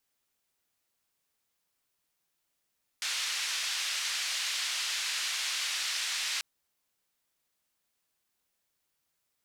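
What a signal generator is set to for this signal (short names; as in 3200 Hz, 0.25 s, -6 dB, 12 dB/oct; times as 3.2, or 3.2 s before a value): noise band 1900–5100 Hz, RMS -33 dBFS 3.39 s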